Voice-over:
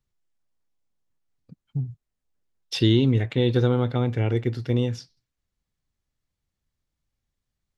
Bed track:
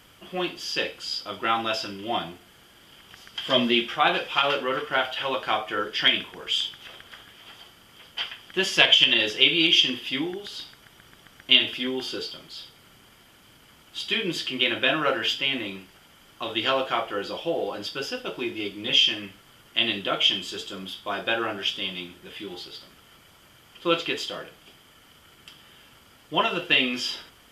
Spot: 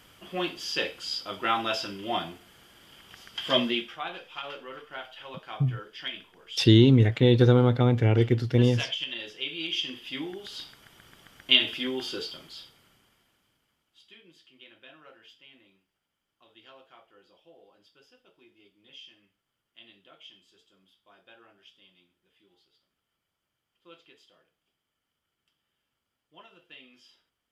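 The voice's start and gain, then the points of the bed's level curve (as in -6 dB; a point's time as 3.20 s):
3.85 s, +2.0 dB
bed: 3.56 s -2 dB
4.08 s -15.5 dB
9.43 s -15.5 dB
10.60 s -2.5 dB
12.45 s -2.5 dB
14.23 s -29 dB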